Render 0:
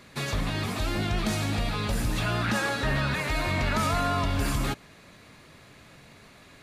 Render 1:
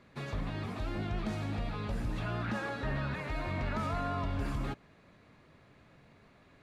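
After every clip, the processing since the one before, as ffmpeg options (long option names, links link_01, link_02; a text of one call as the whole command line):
ffmpeg -i in.wav -af "lowpass=frequency=1500:poles=1,volume=-7dB" out.wav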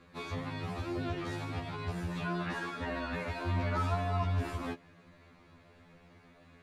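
ffmpeg -i in.wav -af "afftfilt=real='re*2*eq(mod(b,4),0)':imag='im*2*eq(mod(b,4),0)':win_size=2048:overlap=0.75,volume=4dB" out.wav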